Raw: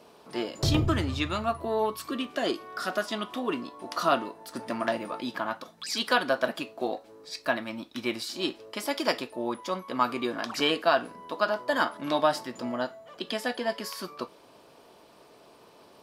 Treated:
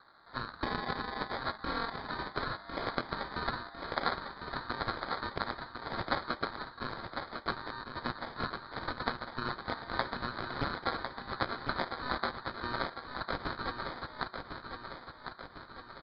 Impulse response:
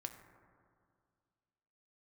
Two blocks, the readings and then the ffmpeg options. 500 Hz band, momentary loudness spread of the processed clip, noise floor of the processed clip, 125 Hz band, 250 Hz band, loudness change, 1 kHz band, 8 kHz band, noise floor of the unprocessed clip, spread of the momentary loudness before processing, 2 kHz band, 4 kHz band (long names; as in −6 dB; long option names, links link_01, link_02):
−11.5 dB, 7 LU, −53 dBFS, −8.5 dB, −10.5 dB, −7.5 dB, −5.0 dB, below −30 dB, −55 dBFS, 10 LU, −4.5 dB, −8.0 dB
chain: -af "afftfilt=real='real(if(lt(b,736),b+184*(1-2*mod(floor(b/184),2)),b),0)':imag='imag(if(lt(b,736),b+184*(1-2*mod(floor(b/184),2)),b),0)':win_size=2048:overlap=0.75,highpass=970,highshelf=frequency=3400:gain=-6.5,acompressor=threshold=-34dB:ratio=6,aeval=exprs='0.0794*(cos(1*acos(clip(val(0)/0.0794,-1,1)))-cos(1*PI/2))+0.00158*(cos(2*acos(clip(val(0)/0.0794,-1,1)))-cos(2*PI/2))+0.0141*(cos(3*acos(clip(val(0)/0.0794,-1,1)))-cos(3*PI/2))+0.0282*(cos(4*acos(clip(val(0)/0.0794,-1,1)))-cos(4*PI/2))+0.00631*(cos(6*acos(clip(val(0)/0.0794,-1,1)))-cos(6*PI/2))':channel_layout=same,aeval=exprs='val(0)*sin(2*PI*130*n/s)':channel_layout=same,aexciter=amount=3.8:drive=1.6:freq=4000,afreqshift=-370,acrusher=samples=16:mix=1:aa=0.000001,aecho=1:1:1052|2104|3156|4208|5260|6312|7364:0.447|0.246|0.135|0.0743|0.0409|0.0225|0.0124,aresample=11025,aresample=44100"